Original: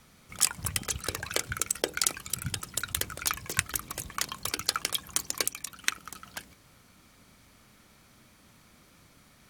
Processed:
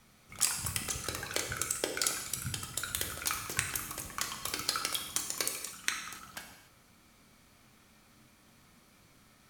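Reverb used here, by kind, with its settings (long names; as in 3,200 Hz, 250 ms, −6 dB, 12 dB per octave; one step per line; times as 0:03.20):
reverb whose tail is shaped and stops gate 320 ms falling, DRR 2 dB
level −5 dB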